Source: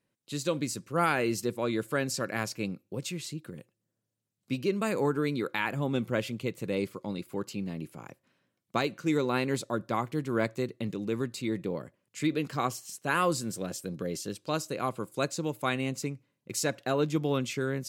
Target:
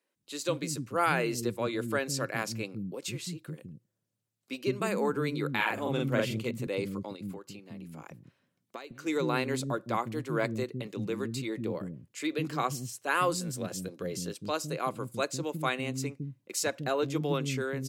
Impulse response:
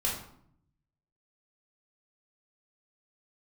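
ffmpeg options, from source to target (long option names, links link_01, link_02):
-filter_complex "[0:a]asettb=1/sr,asplit=3[link_01][link_02][link_03];[link_01]atrim=end=5.494[link_04];[link_02]atrim=start=5.49:end=6.51,asetpts=PTS-STARTPTS,afade=type=in:duration=0.004:curve=qsin,afade=type=out:start_time=1.016:duration=0.004:curve=qsin,asplit=2[link_05][link_06];[link_06]adelay=46,volume=-2dB[link_07];[link_05][link_07]amix=inputs=2:normalize=0,atrim=end_sample=44982[link_08];[link_03]atrim=start=6.506[link_09];[link_04][link_08]acrossfade=duration=0.004:curve1=hsin:curve2=qsin[link_10];[link_10][link_09]acrossfade=duration=0.004:curve1=qsin:curve2=hsin,asplit=3[link_11][link_12][link_13];[link_11]afade=type=out:start_time=7.15:duration=0.02[link_14];[link_12]acompressor=threshold=-38dB:ratio=16,afade=type=in:start_time=7.15:duration=0.02,afade=type=out:start_time=8.94:duration=0.02[link_15];[link_13]afade=type=in:start_time=8.94:duration=0.02[link_16];[link_14][link_15][link_16]amix=inputs=3:normalize=0,acrossover=split=280[link_17][link_18];[link_17]adelay=160[link_19];[link_19][link_18]amix=inputs=2:normalize=0"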